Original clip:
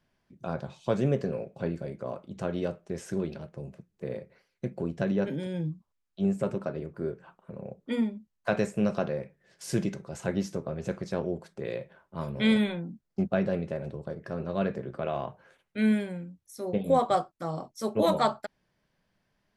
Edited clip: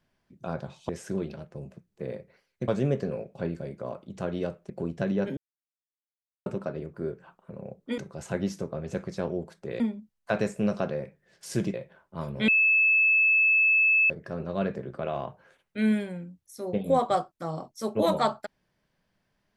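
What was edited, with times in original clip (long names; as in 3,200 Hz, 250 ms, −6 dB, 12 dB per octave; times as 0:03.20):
0:02.91–0:04.70: move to 0:00.89
0:05.37–0:06.46: silence
0:09.92–0:11.74: move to 0:07.98
0:12.48–0:14.10: beep over 2,610 Hz −18 dBFS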